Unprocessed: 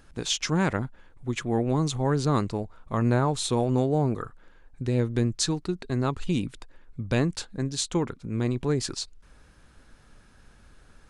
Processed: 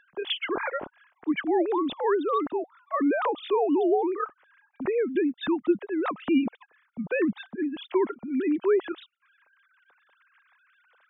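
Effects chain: formants replaced by sine waves

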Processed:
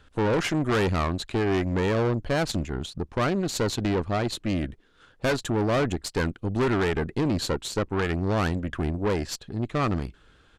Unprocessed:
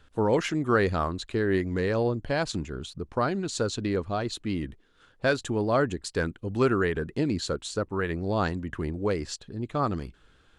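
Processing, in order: treble shelf 6.9 kHz -3 dB; valve stage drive 28 dB, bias 0.75; resampled via 32 kHz; trim +8 dB

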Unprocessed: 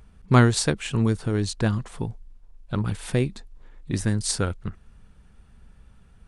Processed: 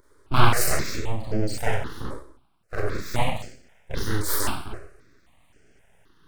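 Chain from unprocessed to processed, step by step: 0.91–1.54 s: resonances exaggerated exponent 3; high-pass 150 Hz 12 dB/octave; Schroeder reverb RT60 0.57 s, combs from 29 ms, DRR -6 dB; vibrato 3.7 Hz 41 cents; full-wave rectifier; stepped phaser 3.8 Hz 730–3800 Hz

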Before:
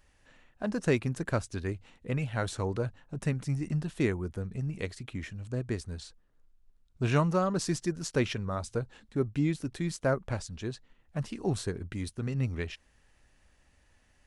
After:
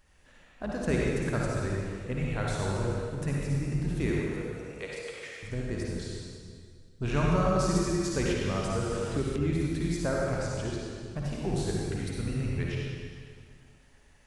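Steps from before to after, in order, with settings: octave divider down 2 oct, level -6 dB; 4.10–5.43 s: elliptic high-pass 420 Hz; in parallel at -1.5 dB: compression, threshold -38 dBFS, peak gain reduction 17.5 dB; on the sum: reverberation RT60 2.0 s, pre-delay 50 ms, DRR -4 dB; 8.30–9.36 s: three bands compressed up and down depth 100%; trim -5.5 dB

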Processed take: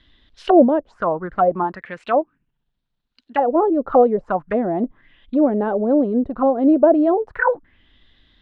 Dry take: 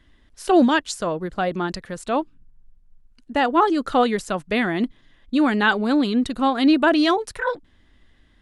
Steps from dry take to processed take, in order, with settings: 1.63–3.46 s: high-pass 200 Hz -> 450 Hz 6 dB/octave; touch-sensitive low-pass 580–3900 Hz down, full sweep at -18 dBFS; trim -1 dB

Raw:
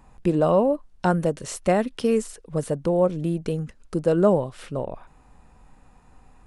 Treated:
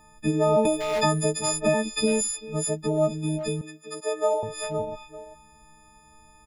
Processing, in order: partials quantised in pitch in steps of 6 st; 3.61–4.43 s: high-pass 490 Hz 24 dB/octave; dynamic bell 1.5 kHz, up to -4 dB, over -32 dBFS, Q 0.7; speakerphone echo 390 ms, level -11 dB; 0.65–2.21 s: three bands compressed up and down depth 100%; trim -2.5 dB

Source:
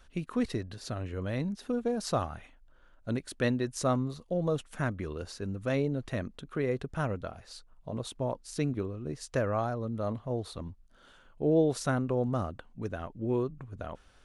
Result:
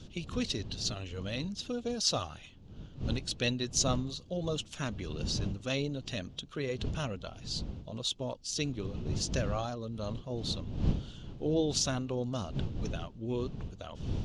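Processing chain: coarse spectral quantiser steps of 15 dB; wind noise 150 Hz -35 dBFS; high-order bell 4.4 kHz +16 dB; trim -4.5 dB

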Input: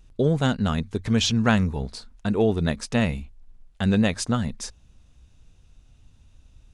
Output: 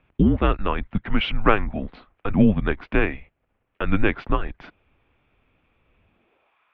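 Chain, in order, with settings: high-pass sweep 130 Hz -> 1.3 kHz, 5.75–6.58 s; mistuned SSB -210 Hz 250–2900 Hz; trim +5.5 dB

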